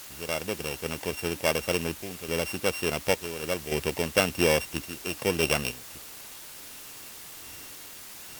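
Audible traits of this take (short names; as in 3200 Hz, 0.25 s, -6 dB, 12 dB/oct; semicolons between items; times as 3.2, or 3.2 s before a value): a buzz of ramps at a fixed pitch in blocks of 16 samples; random-step tremolo, depth 80%; a quantiser's noise floor 8-bit, dither triangular; Opus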